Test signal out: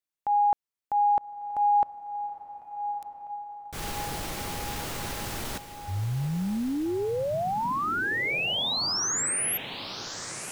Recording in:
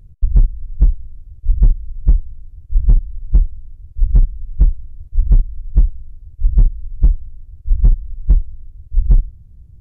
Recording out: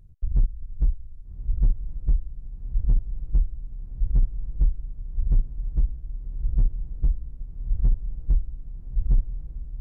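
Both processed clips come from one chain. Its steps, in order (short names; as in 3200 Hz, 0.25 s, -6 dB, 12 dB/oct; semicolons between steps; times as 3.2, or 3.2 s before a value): transient shaper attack -5 dB, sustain -1 dB; diffused feedback echo 1.202 s, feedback 61%, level -11 dB; gain -7.5 dB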